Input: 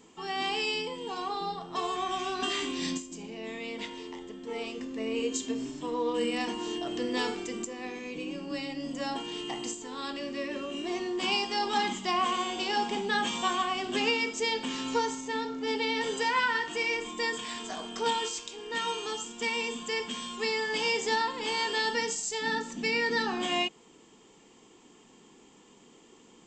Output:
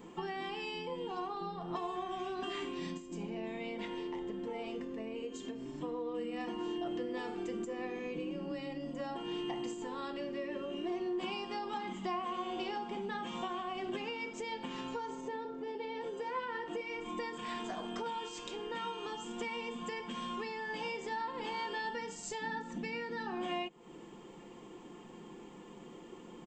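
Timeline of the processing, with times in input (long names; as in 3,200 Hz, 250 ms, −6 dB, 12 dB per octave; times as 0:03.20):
0:15.09–0:16.81: parametric band 450 Hz +9 dB 1.2 octaves
whole clip: parametric band 6,700 Hz −14.5 dB 2.5 octaves; downward compressor, threshold −44 dBFS; comb filter 5.7 ms, depth 43%; level +6.5 dB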